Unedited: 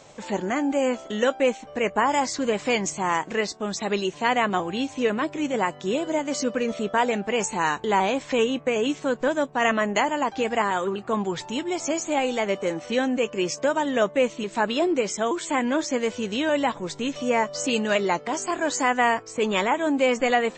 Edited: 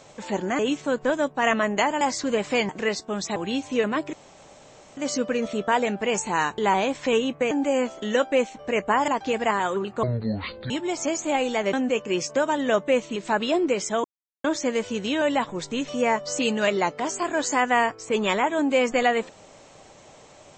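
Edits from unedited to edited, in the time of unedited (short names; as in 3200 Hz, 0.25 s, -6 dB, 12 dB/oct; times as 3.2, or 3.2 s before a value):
0.59–2.16 swap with 8.77–10.19
2.84–3.21 cut
3.88–4.62 cut
5.39–6.23 room tone
11.14–11.53 speed 58%
12.56–13.01 cut
15.32–15.72 mute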